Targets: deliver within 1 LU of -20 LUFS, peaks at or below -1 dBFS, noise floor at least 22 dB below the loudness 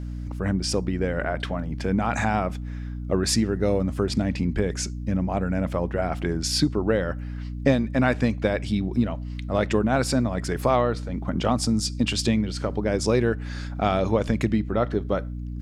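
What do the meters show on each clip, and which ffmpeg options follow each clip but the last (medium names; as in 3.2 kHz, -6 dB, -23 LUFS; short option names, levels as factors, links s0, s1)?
hum 60 Hz; highest harmonic 300 Hz; hum level -30 dBFS; loudness -25.0 LUFS; peak level -6.5 dBFS; loudness target -20.0 LUFS
-> -af "bandreject=f=60:t=h:w=4,bandreject=f=120:t=h:w=4,bandreject=f=180:t=h:w=4,bandreject=f=240:t=h:w=4,bandreject=f=300:t=h:w=4"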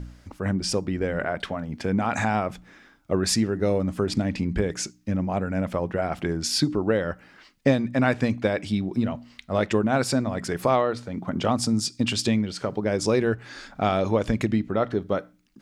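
hum not found; loudness -25.5 LUFS; peak level -7.0 dBFS; loudness target -20.0 LUFS
-> -af "volume=1.88"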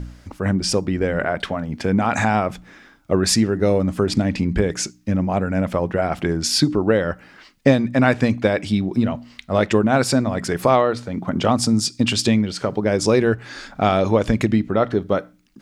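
loudness -20.0 LUFS; peak level -1.5 dBFS; noise floor -51 dBFS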